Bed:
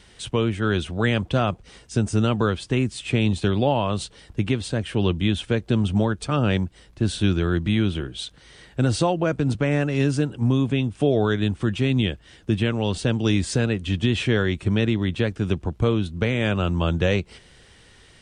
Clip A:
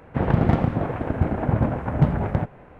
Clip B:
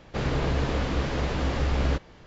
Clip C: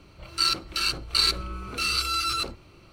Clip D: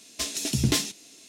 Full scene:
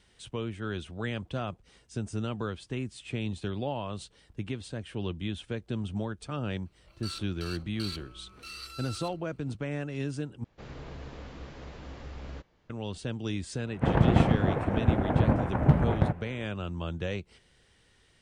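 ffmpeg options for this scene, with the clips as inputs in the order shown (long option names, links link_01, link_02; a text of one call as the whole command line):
ffmpeg -i bed.wav -i cue0.wav -i cue1.wav -i cue2.wav -filter_complex "[0:a]volume=-12.5dB[link_01];[3:a]asoftclip=type=tanh:threshold=-11dB[link_02];[link_01]asplit=2[link_03][link_04];[link_03]atrim=end=10.444[link_05];[2:a]atrim=end=2.26,asetpts=PTS-STARTPTS,volume=-17dB[link_06];[link_04]atrim=start=12.696[link_07];[link_02]atrim=end=2.92,asetpts=PTS-STARTPTS,volume=-17dB,afade=type=in:duration=0.004:curve=hsin,afade=type=out:start_time=2.916:duration=0.004:curve=hsin,adelay=6650[link_08];[1:a]atrim=end=2.79,asetpts=PTS-STARTPTS,volume=-2.5dB,afade=type=in:duration=0.004:curve=hsin,afade=type=out:start_time=2.786:duration=0.004:curve=hsin,adelay=13670[link_09];[link_05][link_06]acrossfade=duration=0.004:curve1=hsin:curve2=hsin[link_10];[link_10][link_07]acrossfade=duration=0.004:curve1=hsin:curve2=hsin[link_11];[link_11][link_08][link_09]amix=inputs=3:normalize=0" out.wav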